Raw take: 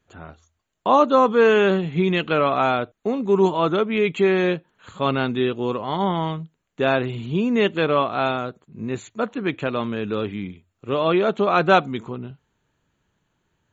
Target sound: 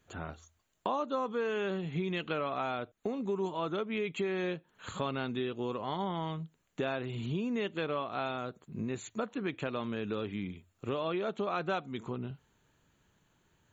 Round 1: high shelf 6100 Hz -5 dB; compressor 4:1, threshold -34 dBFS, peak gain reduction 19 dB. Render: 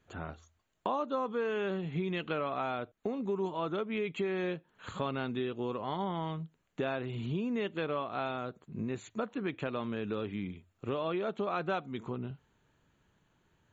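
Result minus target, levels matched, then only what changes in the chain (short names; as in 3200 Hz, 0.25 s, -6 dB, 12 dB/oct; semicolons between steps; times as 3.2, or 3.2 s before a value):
8000 Hz band -6.5 dB
change: high shelf 6100 Hz +6.5 dB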